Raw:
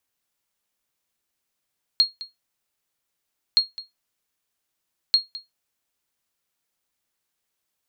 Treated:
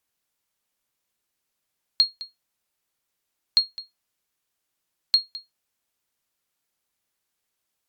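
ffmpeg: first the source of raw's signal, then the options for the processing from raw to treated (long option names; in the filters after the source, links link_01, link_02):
-f lavfi -i "aevalsrc='0.376*(sin(2*PI*4270*mod(t,1.57))*exp(-6.91*mod(t,1.57)/0.17)+0.126*sin(2*PI*4270*max(mod(t,1.57)-0.21,0))*exp(-6.91*max(mod(t,1.57)-0.21,0)/0.17))':duration=4.71:sample_rate=44100"
-ar 48000 -c:a libopus -b:a 256k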